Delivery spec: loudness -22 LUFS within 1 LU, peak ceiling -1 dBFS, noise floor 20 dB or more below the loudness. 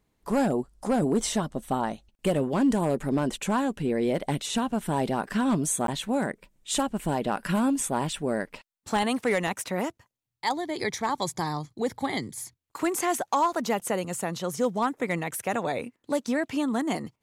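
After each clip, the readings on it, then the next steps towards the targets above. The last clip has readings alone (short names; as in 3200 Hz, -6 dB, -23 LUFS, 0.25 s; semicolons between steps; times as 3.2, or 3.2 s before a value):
clipped 0.4%; flat tops at -16.5 dBFS; dropouts 1; longest dropout 12 ms; loudness -28.0 LUFS; peak -16.5 dBFS; loudness target -22.0 LUFS
-> clip repair -16.5 dBFS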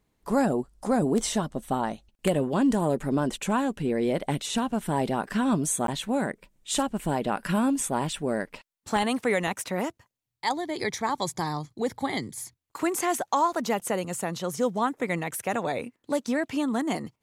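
clipped 0.0%; dropouts 1; longest dropout 12 ms
-> interpolate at 5.87, 12 ms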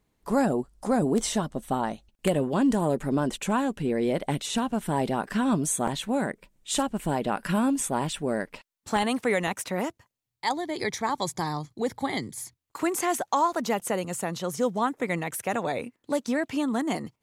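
dropouts 0; loudness -28.0 LUFS; peak -7.5 dBFS; loudness target -22.0 LUFS
-> gain +6 dB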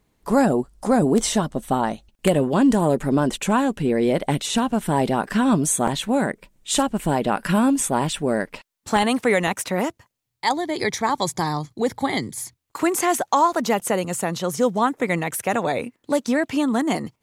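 loudness -22.0 LUFS; peak -1.5 dBFS; noise floor -74 dBFS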